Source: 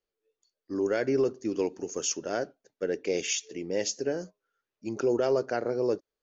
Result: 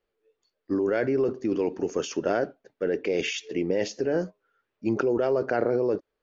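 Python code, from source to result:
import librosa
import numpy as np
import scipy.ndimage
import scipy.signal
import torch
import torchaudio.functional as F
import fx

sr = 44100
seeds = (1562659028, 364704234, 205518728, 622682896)

p1 = fx.over_compress(x, sr, threshold_db=-32.0, ratio=-0.5)
p2 = x + (p1 * 10.0 ** (1.0 / 20.0))
y = scipy.signal.sosfilt(scipy.signal.butter(2, 2900.0, 'lowpass', fs=sr, output='sos'), p2)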